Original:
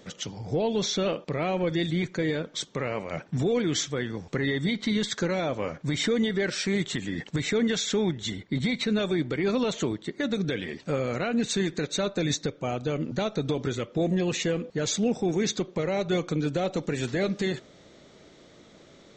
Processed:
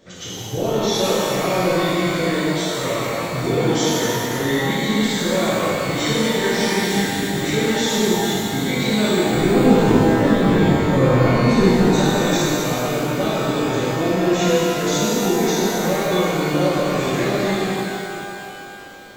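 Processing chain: 9.34–11.93 RIAA curve playback; shimmer reverb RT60 2.7 s, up +12 st, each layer -8 dB, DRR -11 dB; gain -3.5 dB

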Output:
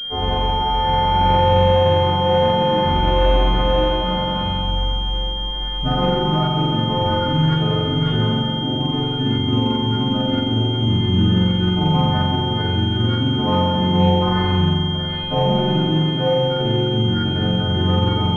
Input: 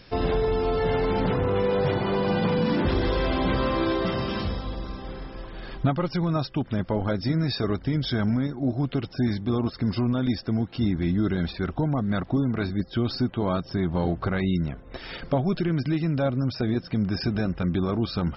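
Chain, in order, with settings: frequency quantiser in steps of 3 st; spring tank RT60 2.4 s, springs 44 ms, chirp 25 ms, DRR -8.5 dB; pulse-width modulation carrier 3200 Hz

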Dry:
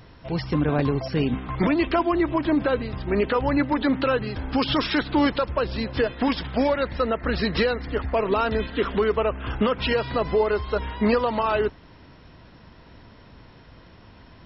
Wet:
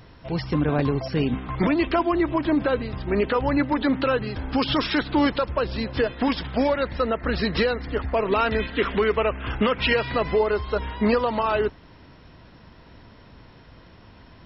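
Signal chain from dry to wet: 8.26–10.39 dynamic EQ 2200 Hz, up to +7 dB, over -43 dBFS, Q 1.6

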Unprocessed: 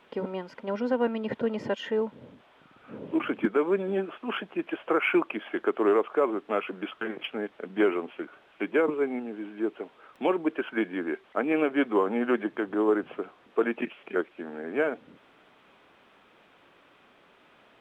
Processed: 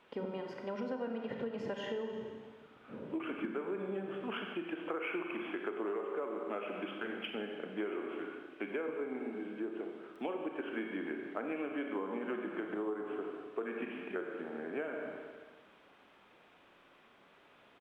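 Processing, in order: on a send: frequency-shifting echo 0.138 s, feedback 36%, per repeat -31 Hz, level -19 dB; on the sum: Schroeder reverb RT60 1.4 s, combs from 31 ms, DRR 3 dB; compressor, threshold -29 dBFS, peak gain reduction 12 dB; gain -6 dB

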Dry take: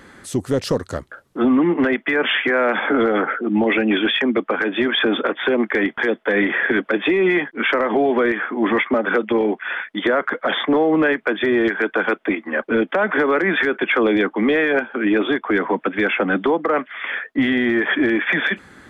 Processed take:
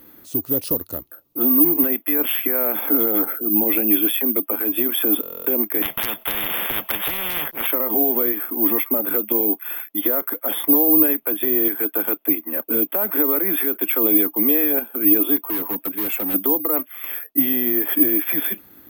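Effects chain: low shelf 430 Hz -3 dB; small resonant body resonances 300/2600 Hz, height 9 dB, ringing for 60 ms; careless resampling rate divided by 3×, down filtered, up zero stuff; bell 1700 Hz -10 dB 0.87 oct; 15.36–16.34 hard clip -10 dBFS, distortion -20 dB; stuck buffer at 5.21, samples 1024, times 10; 5.82–7.67 spectral compressor 10:1; gain -6.5 dB

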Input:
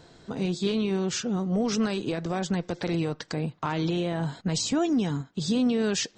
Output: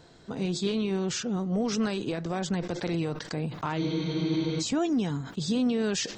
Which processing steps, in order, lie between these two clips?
spectral freeze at 3.81, 0.79 s; sustainer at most 93 dB/s; gain -2 dB

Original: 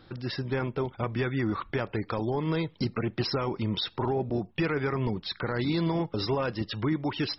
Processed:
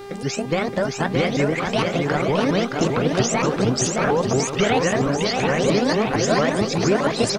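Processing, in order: repeated pitch sweeps +11.5 st, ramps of 0.228 s; bouncing-ball echo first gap 0.62 s, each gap 0.7×, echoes 5; buzz 400 Hz, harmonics 39, -45 dBFS -8 dB/oct; gain +8.5 dB

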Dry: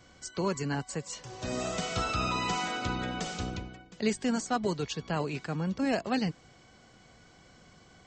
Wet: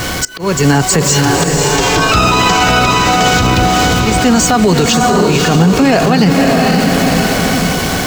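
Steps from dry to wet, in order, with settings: zero-crossing step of -40.5 dBFS; auto swell 0.414 s; 1.37–2.12 ring modulator 220 Hz; diffused feedback echo 0.542 s, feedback 47%, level -3.5 dB; on a send at -13.5 dB: reverb RT60 0.35 s, pre-delay 3 ms; on the sum: maximiser +27 dB; gain -1 dB

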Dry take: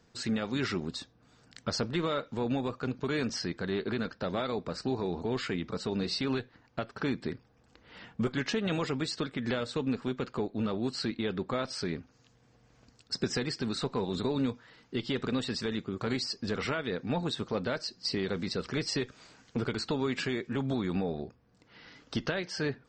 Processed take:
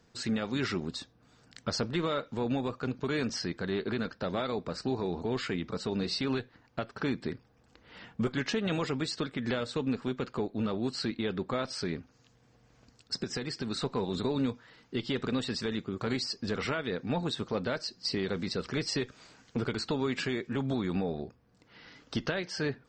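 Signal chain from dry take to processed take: 13.21–13.71 compressor, threshold -31 dBFS, peak gain reduction 6.5 dB

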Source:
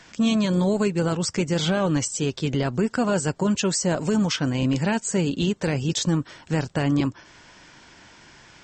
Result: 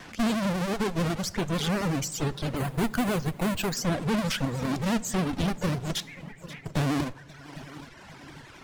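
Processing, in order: half-waves squared off; air absorption 55 m; in parallel at +1 dB: limiter -22.5 dBFS, peak gain reduction 11.5 dB; on the sum: one-sided clip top -28.5 dBFS; 6–6.66 ladder band-pass 2300 Hz, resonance 70%; multi-head echo 0.266 s, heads second and third, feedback 41%, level -16 dB; 2.56–3.77 careless resampling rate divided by 4×, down filtered, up hold; reverb removal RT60 1.5 s; on a send at -16 dB: reverb RT60 0.85 s, pre-delay 3 ms; on the sum: vibrato 11 Hz 99 cents; gain -5.5 dB

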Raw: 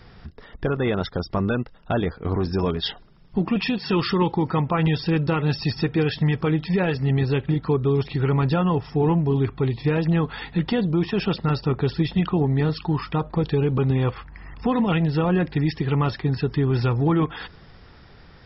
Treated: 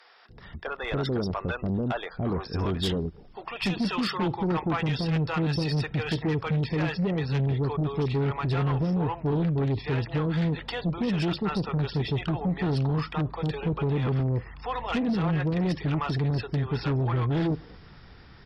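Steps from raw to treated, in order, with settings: bands offset in time highs, lows 0.29 s, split 540 Hz; added harmonics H 5 -12 dB, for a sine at -9.5 dBFS; gain -8.5 dB

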